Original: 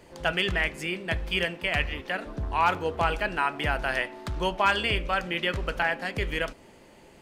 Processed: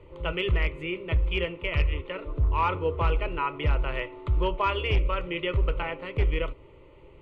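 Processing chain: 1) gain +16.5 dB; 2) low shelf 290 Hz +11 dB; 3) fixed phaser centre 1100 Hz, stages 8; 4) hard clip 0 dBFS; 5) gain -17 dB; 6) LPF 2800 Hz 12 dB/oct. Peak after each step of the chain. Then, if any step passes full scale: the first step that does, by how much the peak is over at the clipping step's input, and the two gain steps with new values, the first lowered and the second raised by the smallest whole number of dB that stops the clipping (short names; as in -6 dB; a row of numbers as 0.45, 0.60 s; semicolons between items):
+6.0, +9.5, +7.0, 0.0, -17.0, -16.5 dBFS; step 1, 7.0 dB; step 1 +9.5 dB, step 5 -10 dB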